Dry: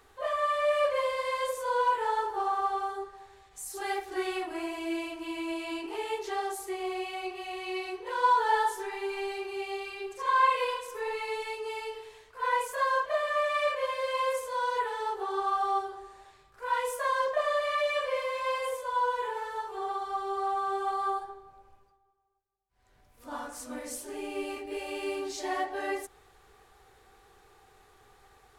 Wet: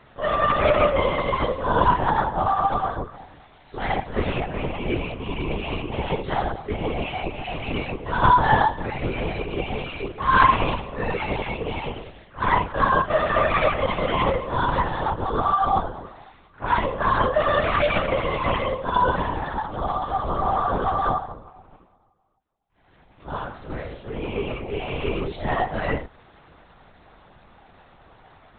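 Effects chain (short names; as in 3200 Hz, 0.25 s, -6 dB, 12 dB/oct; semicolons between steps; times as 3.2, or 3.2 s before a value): LPC vocoder at 8 kHz whisper; gain +8 dB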